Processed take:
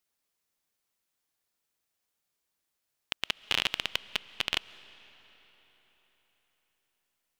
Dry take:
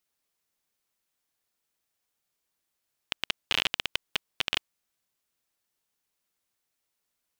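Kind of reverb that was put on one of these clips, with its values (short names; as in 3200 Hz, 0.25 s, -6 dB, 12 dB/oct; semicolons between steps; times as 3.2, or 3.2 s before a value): digital reverb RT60 4.5 s, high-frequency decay 0.8×, pre-delay 95 ms, DRR 18 dB; gain -1 dB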